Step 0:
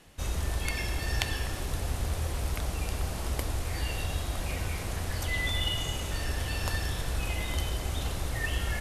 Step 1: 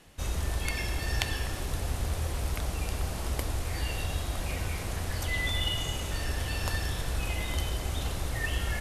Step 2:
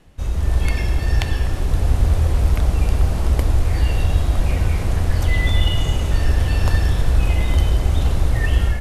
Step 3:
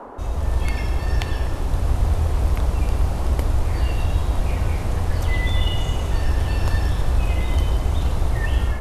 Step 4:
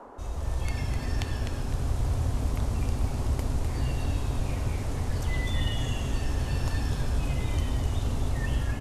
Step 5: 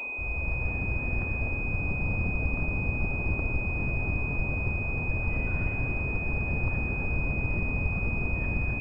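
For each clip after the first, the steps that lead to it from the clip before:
no processing that can be heard
spectral tilt −2 dB per octave; automatic gain control gain up to 7 dB; level +1 dB
noise in a band 220–1,100 Hz −34 dBFS; level −3.5 dB
parametric band 6,900 Hz +6 dB 1.3 octaves; on a send: echo with shifted repeats 253 ms, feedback 35%, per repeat −150 Hz, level −6 dB; on the sum: level −9 dB
wavefolder on the positive side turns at −27 dBFS; switching amplifier with a slow clock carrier 2,500 Hz

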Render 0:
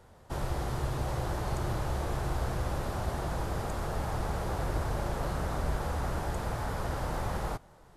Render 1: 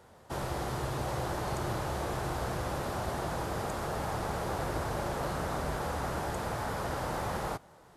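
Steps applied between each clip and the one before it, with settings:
high-pass filter 160 Hz 6 dB per octave
level +2 dB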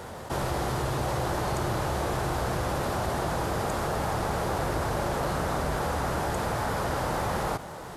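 envelope flattener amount 50%
level +4 dB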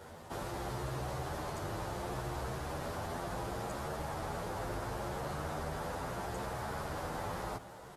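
barber-pole flanger 10.2 ms +0.72 Hz
level −7.5 dB

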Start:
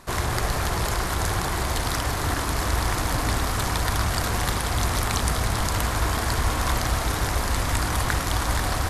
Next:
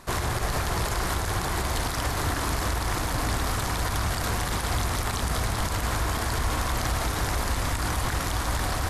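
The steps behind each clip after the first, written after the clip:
brickwall limiter −17 dBFS, peak gain reduction 10 dB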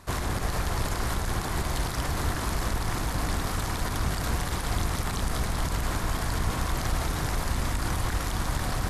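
sub-octave generator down 1 octave, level +2 dB
level −3.5 dB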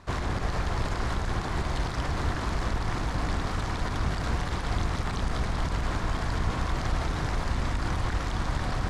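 high-frequency loss of the air 97 metres

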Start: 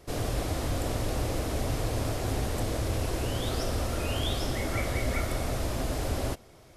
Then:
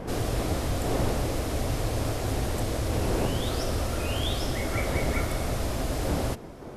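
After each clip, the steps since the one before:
wind on the microphone 480 Hz −38 dBFS
level +1.5 dB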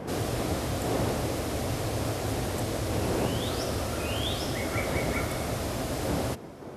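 high-pass filter 86 Hz 12 dB per octave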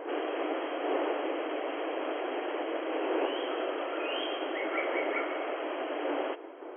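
linear-phase brick-wall band-pass 280–3,300 Hz

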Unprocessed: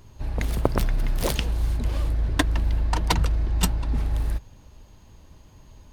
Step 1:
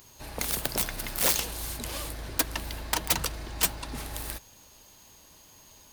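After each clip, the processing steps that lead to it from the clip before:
RIAA equalisation recording
wrap-around overflow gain 14.5 dB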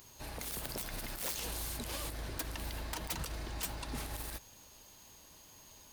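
brickwall limiter −26 dBFS, peak gain reduction 11.5 dB
level −3 dB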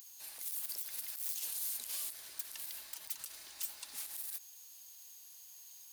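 first difference
brickwall limiter −30.5 dBFS, peak gain reduction 7.5 dB
level +3 dB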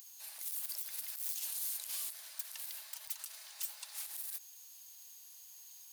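Butterworth high-pass 570 Hz 36 dB per octave

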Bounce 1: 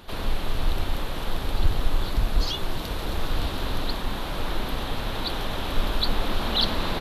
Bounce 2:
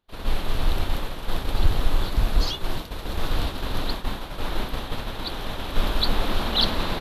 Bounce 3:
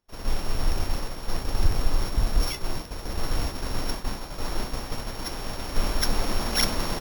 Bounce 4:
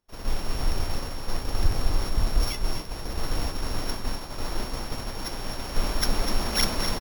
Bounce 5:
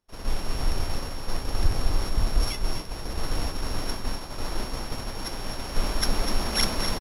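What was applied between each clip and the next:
downward expander −22 dBFS; level +2 dB
samples sorted by size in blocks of 8 samples; level −2 dB
single-tap delay 250 ms −8.5 dB; level −1 dB
downsampling to 32,000 Hz

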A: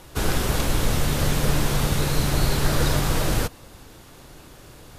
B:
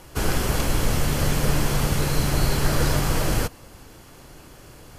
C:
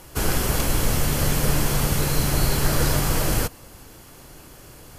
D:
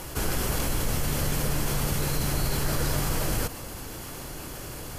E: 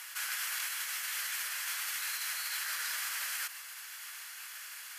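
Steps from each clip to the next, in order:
notch filter 3,700 Hz, Q 9.2
high-shelf EQ 9,200 Hz +8.5 dB
envelope flattener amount 50%; level −8 dB
four-pole ladder high-pass 1,400 Hz, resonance 40%; level +4 dB

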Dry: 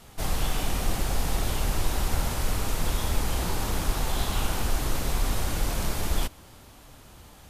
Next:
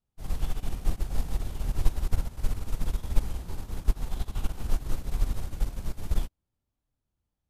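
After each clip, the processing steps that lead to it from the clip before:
low-shelf EQ 330 Hz +11 dB
expander for the loud parts 2.5 to 1, over −32 dBFS
level −5 dB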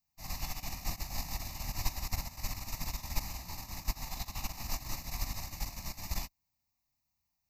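spectral tilt +3 dB per octave
phaser with its sweep stopped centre 2,200 Hz, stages 8
level +3 dB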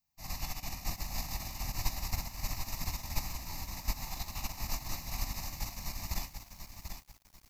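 feedback echo at a low word length 740 ms, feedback 35%, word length 9 bits, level −7 dB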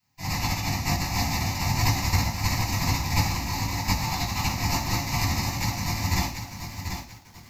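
convolution reverb RT60 0.45 s, pre-delay 3 ms, DRR −5.5 dB

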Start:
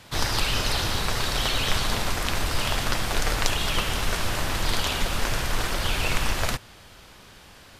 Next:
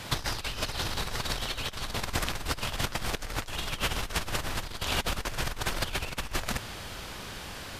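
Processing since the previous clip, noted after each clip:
compressor whose output falls as the input rises −30 dBFS, ratio −0.5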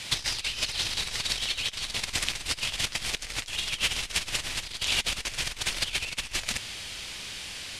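flat-topped bell 4,500 Hz +13 dB 2.7 octaves
level −7 dB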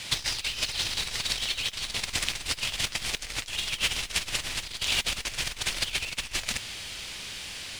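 noise that follows the level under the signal 22 dB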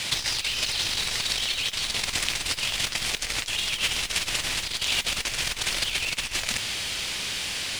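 low-shelf EQ 95 Hz −5.5 dB
in parallel at 0 dB: compressor whose output falls as the input rises −36 dBFS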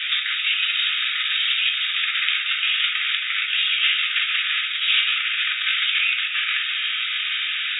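linear-phase brick-wall band-pass 1,200–3,800 Hz
reverb whose tail is shaped and stops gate 90 ms flat, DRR −1.5 dB
level +5 dB

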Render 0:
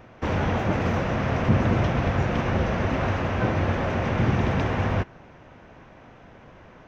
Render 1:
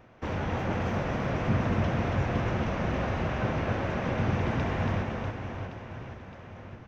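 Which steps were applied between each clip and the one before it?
reverse bouncing-ball delay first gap 280 ms, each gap 1.3×, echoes 5
level −7 dB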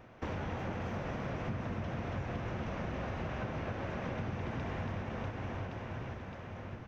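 downward compressor 6 to 1, threshold −35 dBFS, peak gain reduction 13 dB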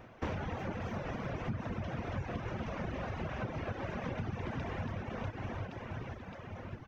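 reverb reduction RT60 1.2 s
level +2.5 dB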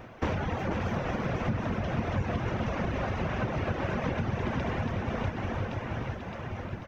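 single-tap delay 491 ms −7 dB
level +7 dB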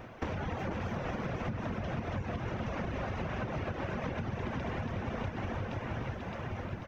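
downward compressor, threshold −31 dBFS, peak gain reduction 7.5 dB
level −1 dB

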